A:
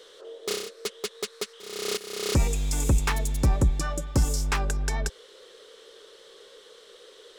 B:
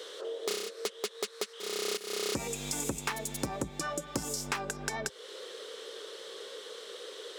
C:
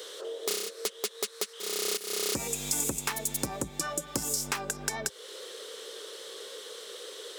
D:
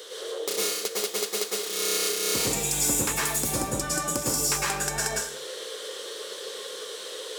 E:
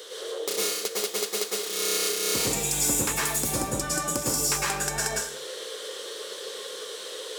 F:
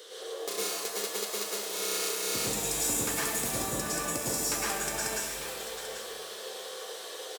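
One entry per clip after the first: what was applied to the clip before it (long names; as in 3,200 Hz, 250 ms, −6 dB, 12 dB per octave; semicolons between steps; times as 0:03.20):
high-pass filter 210 Hz 12 dB per octave; downward compressor 3 to 1, threshold −40 dBFS, peak gain reduction 14 dB; level +6 dB
high-shelf EQ 7,300 Hz +12 dB
dense smooth reverb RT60 0.62 s, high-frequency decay 0.95×, pre-delay 95 ms, DRR −5.5 dB
no processing that can be heard
single-tap delay 789 ms −11.5 dB; reverb with rising layers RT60 1.6 s, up +7 semitones, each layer −2 dB, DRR 5.5 dB; level −6.5 dB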